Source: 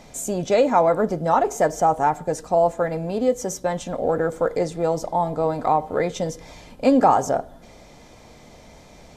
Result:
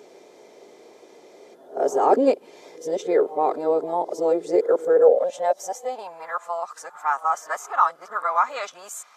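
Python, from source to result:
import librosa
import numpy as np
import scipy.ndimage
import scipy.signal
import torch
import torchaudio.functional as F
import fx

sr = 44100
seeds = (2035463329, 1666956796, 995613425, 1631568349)

y = np.flip(x).copy()
y = fx.filter_sweep_highpass(y, sr, from_hz=390.0, to_hz=1200.0, start_s=4.76, end_s=6.45, q=5.9)
y = F.gain(torch.from_numpy(y), -5.5).numpy()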